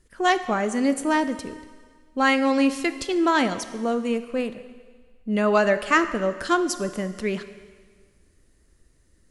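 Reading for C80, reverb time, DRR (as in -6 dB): 13.5 dB, 1.7 s, 10.5 dB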